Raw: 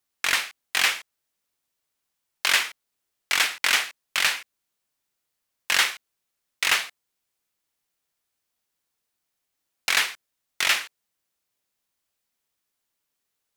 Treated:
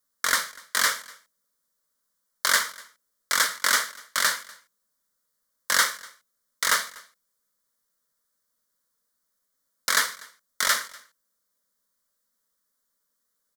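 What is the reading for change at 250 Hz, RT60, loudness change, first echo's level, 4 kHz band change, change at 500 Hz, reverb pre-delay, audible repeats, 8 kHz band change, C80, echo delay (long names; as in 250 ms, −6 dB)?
+1.0 dB, no reverb audible, −1.0 dB, −23.5 dB, −3.0 dB, +2.0 dB, no reverb audible, 1, +3.0 dB, no reverb audible, 244 ms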